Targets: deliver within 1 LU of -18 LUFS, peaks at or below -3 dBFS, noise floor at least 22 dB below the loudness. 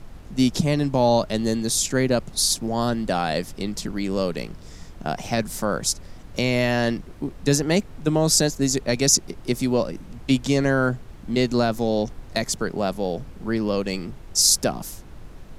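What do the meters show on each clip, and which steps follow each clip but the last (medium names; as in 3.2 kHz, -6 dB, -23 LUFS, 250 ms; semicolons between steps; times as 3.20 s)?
noise floor -42 dBFS; noise floor target -45 dBFS; loudness -22.5 LUFS; peak level -3.5 dBFS; loudness target -18.0 LUFS
-> noise print and reduce 6 dB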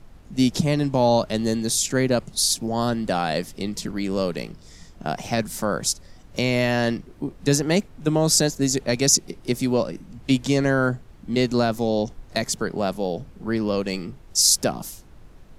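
noise floor -47 dBFS; loudness -22.5 LUFS; peak level -3.5 dBFS; loudness target -18.0 LUFS
-> trim +4.5 dB; peak limiter -3 dBFS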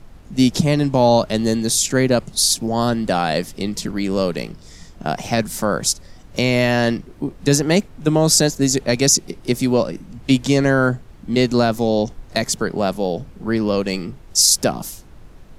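loudness -18.5 LUFS; peak level -3.0 dBFS; noise floor -43 dBFS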